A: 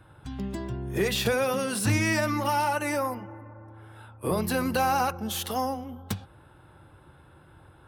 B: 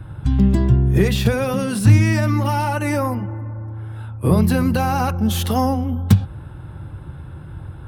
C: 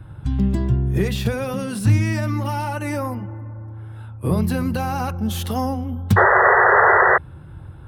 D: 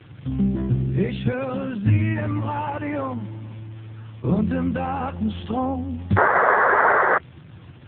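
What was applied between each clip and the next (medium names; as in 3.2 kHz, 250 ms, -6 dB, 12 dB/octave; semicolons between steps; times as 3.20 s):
gain riding within 4 dB 0.5 s; tone controls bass +14 dB, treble -2 dB; trim +4.5 dB
painted sound noise, 6.16–7.18 s, 360–2000 Hz -9 dBFS; trim -4.5 dB
crackle 540 per s -32 dBFS; AMR-NB 5.9 kbps 8 kHz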